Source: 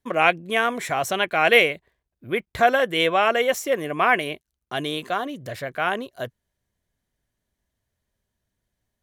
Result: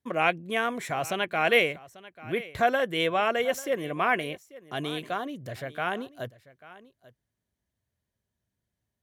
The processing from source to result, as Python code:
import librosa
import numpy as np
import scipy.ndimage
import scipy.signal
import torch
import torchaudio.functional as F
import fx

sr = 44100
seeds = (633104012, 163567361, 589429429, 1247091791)

y = scipy.signal.sosfilt(scipy.signal.butter(2, 79.0, 'highpass', fs=sr, output='sos'), x)
y = fx.low_shelf(y, sr, hz=220.0, db=7.0)
y = y + 10.0 ** (-19.0 / 20.0) * np.pad(y, (int(841 * sr / 1000.0), 0))[:len(y)]
y = F.gain(torch.from_numpy(y), -6.5).numpy()